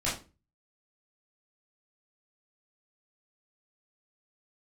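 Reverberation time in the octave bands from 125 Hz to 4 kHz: 0.50 s, 0.40 s, 0.35 s, 0.30 s, 0.25 s, 0.25 s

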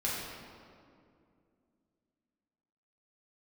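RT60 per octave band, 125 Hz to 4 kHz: 2.8 s, 3.3 s, 2.6 s, 2.1 s, 1.7 s, 1.4 s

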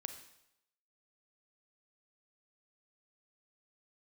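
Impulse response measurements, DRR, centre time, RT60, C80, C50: 7.0 dB, 15 ms, 0.80 s, 11.5 dB, 8.5 dB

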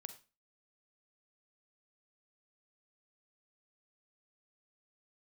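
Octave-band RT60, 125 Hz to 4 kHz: 0.35 s, 0.40 s, 0.30 s, 0.30 s, 0.30 s, 0.30 s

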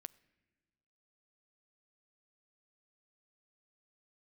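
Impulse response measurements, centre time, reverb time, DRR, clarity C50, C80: 2 ms, no single decay rate, 19.0 dB, 22.0 dB, 23.0 dB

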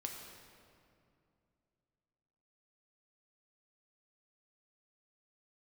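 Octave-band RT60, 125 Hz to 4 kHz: 3.3 s, 3.1 s, 2.7 s, 2.4 s, 2.0 s, 1.6 s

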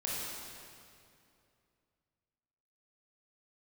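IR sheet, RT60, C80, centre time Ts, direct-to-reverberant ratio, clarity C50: 2.6 s, -1.0 dB, 154 ms, -6.0 dB, -3.0 dB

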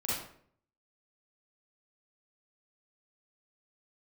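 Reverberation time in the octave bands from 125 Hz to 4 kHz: 0.70 s, 0.65 s, 0.65 s, 0.55 s, 0.50 s, 0.40 s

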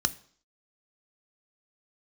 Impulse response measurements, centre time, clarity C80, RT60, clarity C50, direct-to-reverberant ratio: 2 ms, 23.5 dB, 0.55 s, 20.0 dB, 11.0 dB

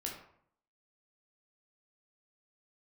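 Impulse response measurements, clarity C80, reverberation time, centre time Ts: 8.5 dB, 0.65 s, 33 ms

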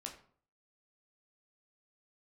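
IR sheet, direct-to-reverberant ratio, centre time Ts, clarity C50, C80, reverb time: 0.5 dB, 19 ms, 9.0 dB, 12.5 dB, 0.50 s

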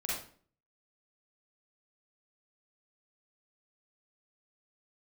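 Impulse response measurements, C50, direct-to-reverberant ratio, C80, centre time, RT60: -1.0 dB, -7.0 dB, 5.5 dB, 57 ms, 0.45 s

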